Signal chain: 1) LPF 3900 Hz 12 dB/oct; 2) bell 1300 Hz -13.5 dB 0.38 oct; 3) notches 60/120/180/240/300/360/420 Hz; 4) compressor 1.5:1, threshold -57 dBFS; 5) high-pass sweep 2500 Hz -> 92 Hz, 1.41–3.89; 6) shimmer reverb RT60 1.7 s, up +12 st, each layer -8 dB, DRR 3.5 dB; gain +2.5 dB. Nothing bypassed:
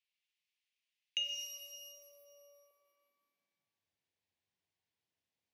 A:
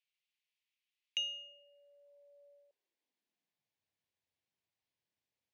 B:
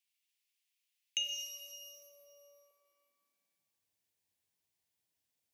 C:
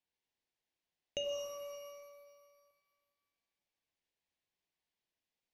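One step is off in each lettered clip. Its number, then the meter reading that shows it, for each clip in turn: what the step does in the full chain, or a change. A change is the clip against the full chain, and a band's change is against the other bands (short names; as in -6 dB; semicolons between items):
6, 8 kHz band -7.0 dB; 1, 8 kHz band +3.5 dB; 5, 500 Hz band +26.5 dB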